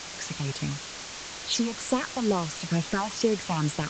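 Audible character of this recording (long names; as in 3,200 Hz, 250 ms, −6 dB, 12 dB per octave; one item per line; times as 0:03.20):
phaser sweep stages 6, 2.2 Hz, lowest notch 400–1,700 Hz
a quantiser's noise floor 6 bits, dither triangular
A-law companding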